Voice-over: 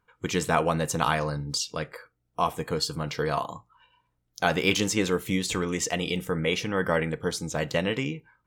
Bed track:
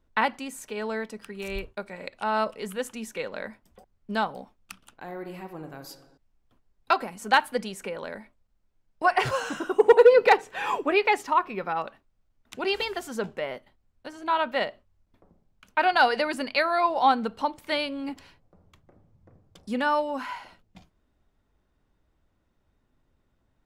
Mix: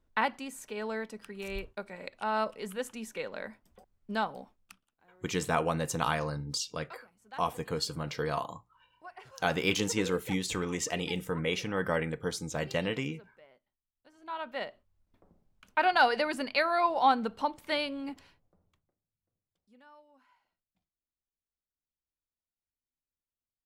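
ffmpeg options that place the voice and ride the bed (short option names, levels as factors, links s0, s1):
-filter_complex "[0:a]adelay=5000,volume=0.562[s0];[1:a]volume=8.41,afade=t=out:st=4.52:d=0.34:silence=0.0794328,afade=t=in:st=13.98:d=1.38:silence=0.0707946,afade=t=out:st=17.87:d=1.09:silence=0.0354813[s1];[s0][s1]amix=inputs=2:normalize=0"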